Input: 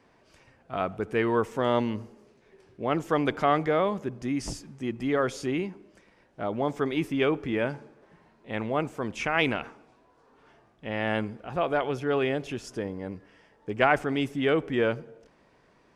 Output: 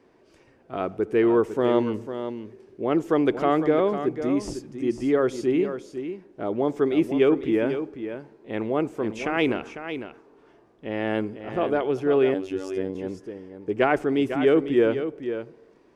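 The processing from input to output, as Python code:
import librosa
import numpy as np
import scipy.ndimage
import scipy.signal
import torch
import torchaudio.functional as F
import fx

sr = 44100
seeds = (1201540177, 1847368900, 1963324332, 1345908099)

y = fx.peak_eq(x, sr, hz=360.0, db=11.5, octaves=0.99)
y = y + 10.0 ** (-9.5 / 20.0) * np.pad(y, (int(500 * sr / 1000.0), 0))[:len(y)]
y = fx.robotise(y, sr, hz=94.9, at=(12.34, 12.95))
y = y * librosa.db_to_amplitude(-2.5)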